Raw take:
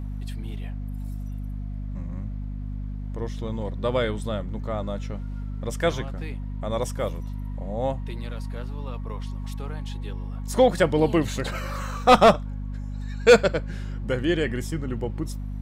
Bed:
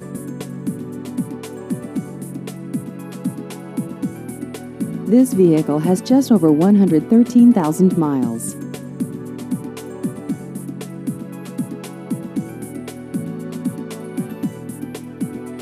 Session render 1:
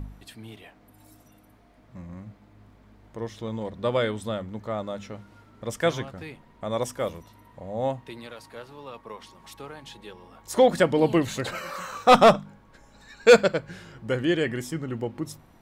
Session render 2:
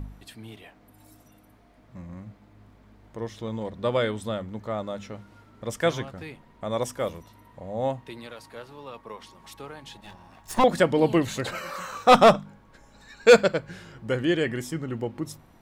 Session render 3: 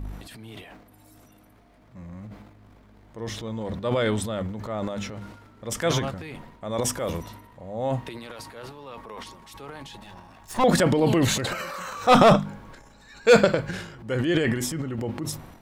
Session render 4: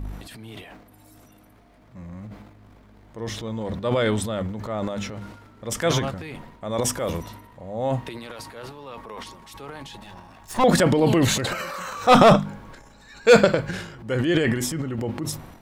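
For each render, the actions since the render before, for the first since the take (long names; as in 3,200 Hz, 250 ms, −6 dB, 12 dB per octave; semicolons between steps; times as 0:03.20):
hum removal 50 Hz, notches 5
0:09.96–0:10.64: lower of the sound and its delayed copy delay 1.1 ms
transient designer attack −3 dB, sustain +11 dB
level +2 dB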